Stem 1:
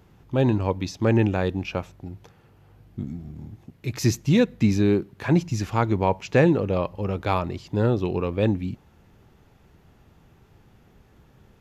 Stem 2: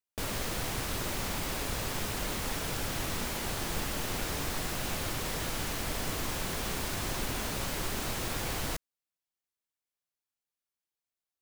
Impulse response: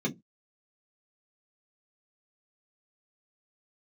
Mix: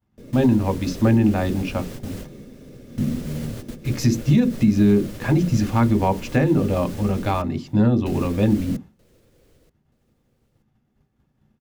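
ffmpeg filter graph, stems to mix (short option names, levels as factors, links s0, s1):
-filter_complex "[0:a]agate=range=0.0224:threshold=0.00794:ratio=3:detection=peak,volume=1.26,asplit=3[s0][s1][s2];[s1]volume=0.237[s3];[1:a]lowshelf=f=640:t=q:w=3:g=7.5,alimiter=level_in=1.12:limit=0.0631:level=0:latency=1:release=257,volume=0.891,volume=1,asplit=3[s4][s5][s6];[s4]atrim=end=7.42,asetpts=PTS-STARTPTS,afade=t=out:st=7.416:d=0.004:c=hsin[s7];[s5]atrim=start=7.42:end=8.06,asetpts=PTS-STARTPTS,volume=0[s8];[s6]atrim=start=8.06,asetpts=PTS-STARTPTS,afade=t=in:d=0.004:c=hsin[s9];[s7][s8][s9]concat=n=3:v=0:a=1,asplit=3[s10][s11][s12];[s11]volume=0.1[s13];[s12]volume=0.0668[s14];[s2]apad=whole_len=503479[s15];[s10][s15]sidechaingate=range=0.2:threshold=0.00708:ratio=16:detection=peak[s16];[2:a]atrim=start_sample=2205[s17];[s3][s13]amix=inputs=2:normalize=0[s18];[s18][s17]afir=irnorm=-1:irlink=0[s19];[s14]aecho=0:1:929|1858|2787|3716:1|0.23|0.0529|0.0122[s20];[s0][s16][s19][s20]amix=inputs=4:normalize=0,alimiter=limit=0.376:level=0:latency=1:release=142"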